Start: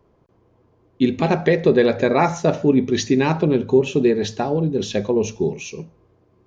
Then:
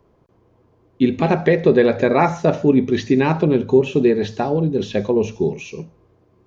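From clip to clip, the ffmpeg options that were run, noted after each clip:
ffmpeg -i in.wav -filter_complex "[0:a]acrossover=split=3400[link_01][link_02];[link_02]acompressor=threshold=-44dB:ratio=4:attack=1:release=60[link_03];[link_01][link_03]amix=inputs=2:normalize=0,volume=1.5dB" out.wav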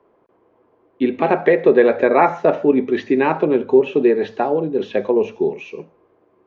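ffmpeg -i in.wav -filter_complex "[0:a]acrossover=split=270 2900:gain=0.1 1 0.1[link_01][link_02][link_03];[link_01][link_02][link_03]amix=inputs=3:normalize=0,volume=3dB" out.wav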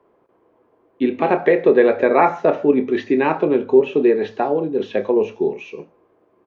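ffmpeg -i in.wav -filter_complex "[0:a]asplit=2[link_01][link_02];[link_02]adelay=28,volume=-12dB[link_03];[link_01][link_03]amix=inputs=2:normalize=0,volume=-1dB" out.wav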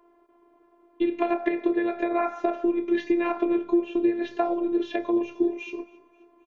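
ffmpeg -i in.wav -af "acompressor=threshold=-20dB:ratio=6,afftfilt=real='hypot(re,im)*cos(PI*b)':imag='0':win_size=512:overlap=0.75,aecho=1:1:265|530|795:0.0708|0.0326|0.015,volume=2.5dB" out.wav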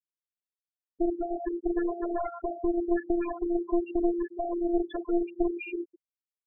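ffmpeg -i in.wav -af "alimiter=limit=-17.5dB:level=0:latency=1:release=453,aeval=exprs='clip(val(0),-1,0.0237)':channel_layout=same,afftfilt=real='re*gte(hypot(re,im),0.0501)':imag='im*gte(hypot(re,im),0.0501)':win_size=1024:overlap=0.75,volume=3.5dB" out.wav

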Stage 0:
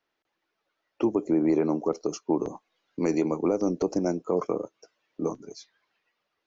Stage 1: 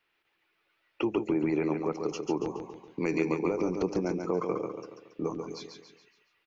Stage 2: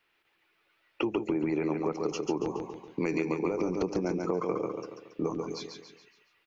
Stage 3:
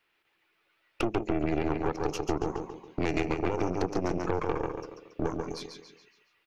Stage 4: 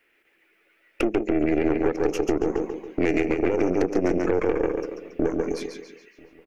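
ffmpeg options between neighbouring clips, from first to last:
ffmpeg -i in.wav -af "acompressor=threshold=-34dB:ratio=1.5,equalizer=frequency=250:width_type=o:width=0.67:gain=-6,equalizer=frequency=630:width_type=o:width=0.67:gain=-7,equalizer=frequency=2500:width_type=o:width=0.67:gain=8,equalizer=frequency=6300:width_type=o:width=0.67:gain=-8,aecho=1:1:140|280|420|560|700:0.531|0.239|0.108|0.0484|0.0218,volume=3.5dB" out.wav
ffmpeg -i in.wav -af "acompressor=threshold=-28dB:ratio=6,volume=3dB" out.wav
ffmpeg -i in.wav -af "aeval=exprs='0.2*(cos(1*acos(clip(val(0)/0.2,-1,1)))-cos(1*PI/2))+0.0398*(cos(6*acos(clip(val(0)/0.2,-1,1)))-cos(6*PI/2))':channel_layout=same,volume=-1dB" out.wav
ffmpeg -i in.wav -filter_complex "[0:a]equalizer=frequency=125:width_type=o:width=1:gain=-11,equalizer=frequency=250:width_type=o:width=1:gain=5,equalizer=frequency=500:width_type=o:width=1:gain=5,equalizer=frequency=1000:width_type=o:width=1:gain=-10,equalizer=frequency=2000:width_type=o:width=1:gain=7,equalizer=frequency=4000:width_type=o:width=1:gain=-10,alimiter=limit=-18.5dB:level=0:latency=1:release=220,asplit=2[link_01][link_02];[link_02]adelay=991.3,volume=-26dB,highshelf=frequency=4000:gain=-22.3[link_03];[link_01][link_03]amix=inputs=2:normalize=0,volume=8dB" out.wav

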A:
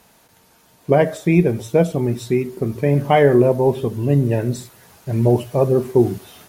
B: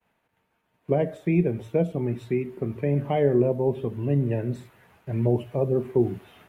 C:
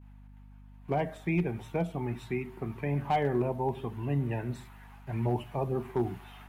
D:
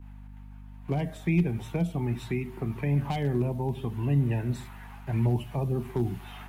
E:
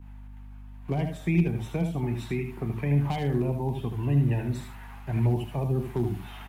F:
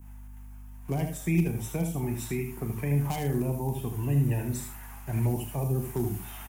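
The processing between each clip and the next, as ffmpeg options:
ffmpeg -i in.wav -filter_complex "[0:a]highshelf=frequency=3600:width_type=q:width=1.5:gain=-12.5,agate=range=-33dB:threshold=-47dB:ratio=3:detection=peak,acrossover=split=180|690|3100[link_01][link_02][link_03][link_04];[link_03]acompressor=threshold=-35dB:ratio=6[link_05];[link_01][link_02][link_05][link_04]amix=inputs=4:normalize=0,volume=-7dB" out.wav
ffmpeg -i in.wav -af "lowshelf=frequency=670:width_type=q:width=3:gain=-6,volume=20dB,asoftclip=hard,volume=-20dB,aeval=exprs='val(0)+0.00316*(sin(2*PI*50*n/s)+sin(2*PI*2*50*n/s)/2+sin(2*PI*3*50*n/s)/3+sin(2*PI*4*50*n/s)/4+sin(2*PI*5*50*n/s)/5)':channel_layout=same" out.wav
ffmpeg -i in.wav -filter_complex "[0:a]acrossover=split=270|3000[link_01][link_02][link_03];[link_02]acompressor=threshold=-45dB:ratio=3[link_04];[link_01][link_04][link_03]amix=inputs=3:normalize=0,volume=6.5dB" out.wav
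ffmpeg -i in.wav -af "aecho=1:1:77:0.447" out.wav
ffmpeg -i in.wav -filter_complex "[0:a]aexciter=amount=4.2:drive=7.3:freq=5600,asplit=2[link_01][link_02];[link_02]adelay=37,volume=-11.5dB[link_03];[link_01][link_03]amix=inputs=2:normalize=0,volume=-2dB" out.wav

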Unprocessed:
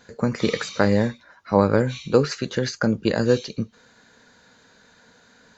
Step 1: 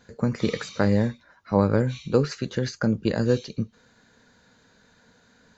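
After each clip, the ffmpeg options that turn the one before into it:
ffmpeg -i in.wav -af "lowshelf=frequency=240:gain=7.5,volume=-5.5dB" out.wav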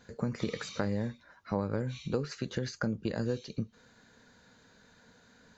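ffmpeg -i in.wav -af "acompressor=threshold=-29dB:ratio=3,volume=-2dB" out.wav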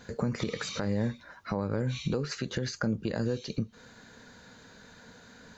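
ffmpeg -i in.wav -af "alimiter=level_in=3.5dB:limit=-24dB:level=0:latency=1:release=236,volume=-3.5dB,volume=8dB" out.wav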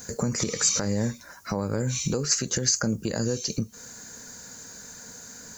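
ffmpeg -i in.wav -af "aexciter=amount=10.5:drive=5.6:freq=5400,volume=3dB" out.wav

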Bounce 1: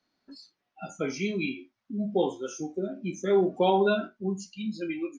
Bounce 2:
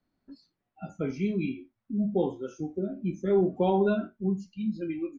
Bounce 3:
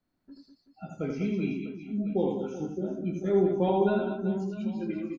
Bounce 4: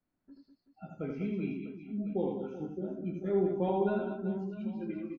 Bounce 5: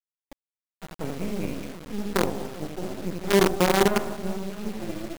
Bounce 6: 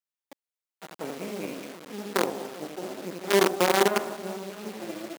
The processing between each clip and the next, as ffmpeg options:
ffmpeg -i in.wav -af "aemphasis=mode=reproduction:type=riaa,volume=-5dB" out.wav
ffmpeg -i in.wav -af "aecho=1:1:80|200|380|650|1055:0.631|0.398|0.251|0.158|0.1,volume=-2dB" out.wav
ffmpeg -i in.wav -af "lowpass=2900,volume=-5dB" out.wav
ffmpeg -i in.wav -af "acrusher=bits=5:dc=4:mix=0:aa=0.000001,volume=8.5dB" out.wav
ffmpeg -i in.wav -af "highpass=300" out.wav

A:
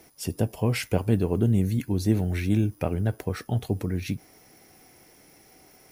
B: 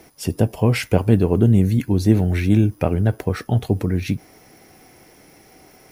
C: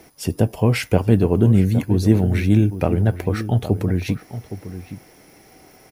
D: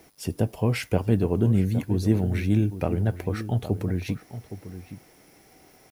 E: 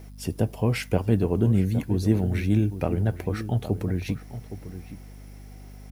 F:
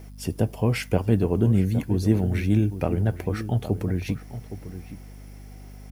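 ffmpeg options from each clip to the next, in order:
ffmpeg -i in.wav -af "highshelf=frequency=4200:gain=-5.5,volume=7.5dB" out.wav
ffmpeg -i in.wav -filter_complex "[0:a]asplit=2[link_01][link_02];[link_02]adelay=816.3,volume=-12dB,highshelf=frequency=4000:gain=-18.4[link_03];[link_01][link_03]amix=inputs=2:normalize=0" out.wav
ffmpeg -i in.wav -af "acrusher=bits=8:mix=0:aa=0.000001,volume=-6.5dB" out.wav
ffmpeg -i in.wav -af "aeval=exprs='val(0)+0.00794*(sin(2*PI*50*n/s)+sin(2*PI*2*50*n/s)/2+sin(2*PI*3*50*n/s)/3+sin(2*PI*4*50*n/s)/4+sin(2*PI*5*50*n/s)/5)':channel_layout=same" out.wav
ffmpeg -i in.wav -af "bandreject=frequency=3900:width=19,volume=1dB" out.wav

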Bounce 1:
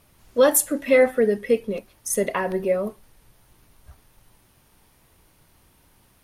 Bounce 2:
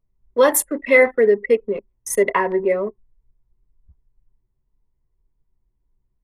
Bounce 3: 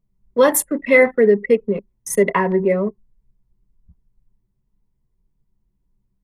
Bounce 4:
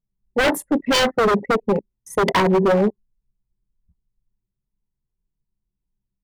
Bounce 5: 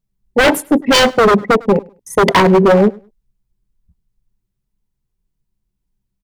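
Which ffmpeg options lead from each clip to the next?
ffmpeg -i in.wav -filter_complex "[0:a]anlmdn=25.1,equalizer=frequency=400:width_type=o:width=0.33:gain=9,equalizer=frequency=1000:width_type=o:width=0.33:gain=10,equalizer=frequency=2000:width_type=o:width=0.33:gain=10,acrossover=split=220|1300[link_01][link_02][link_03];[link_01]alimiter=level_in=11dB:limit=-24dB:level=0:latency=1,volume=-11dB[link_04];[link_04][link_02][link_03]amix=inputs=3:normalize=0" out.wav
ffmpeg -i in.wav -af "equalizer=frequency=180:width=1.9:gain=13" out.wav
ffmpeg -i in.wav -af "acontrast=66,afwtdn=0.141,aeval=exprs='0.355*(abs(mod(val(0)/0.355+3,4)-2)-1)':channel_layout=same,volume=-2dB" out.wav
ffmpeg -i in.wav -af "aecho=1:1:102|204:0.0631|0.0133,volume=7dB" out.wav

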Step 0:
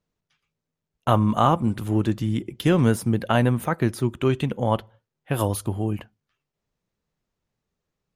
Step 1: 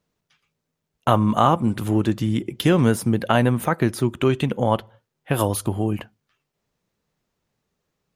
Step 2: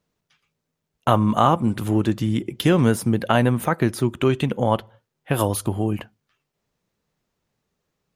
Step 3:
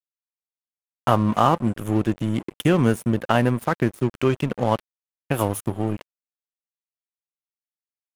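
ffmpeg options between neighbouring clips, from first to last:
ffmpeg -i in.wav -filter_complex "[0:a]lowshelf=frequency=75:gain=-8.5,asplit=2[link_01][link_02];[link_02]acompressor=threshold=-27dB:ratio=6,volume=1dB[link_03];[link_01][link_03]amix=inputs=2:normalize=0" out.wav
ffmpeg -i in.wav -af anull out.wav
ffmpeg -i in.wav -af "asuperstop=centerf=4400:order=4:qfactor=1.8,aeval=exprs='sgn(val(0))*max(abs(val(0))-0.0266,0)':channel_layout=same" out.wav

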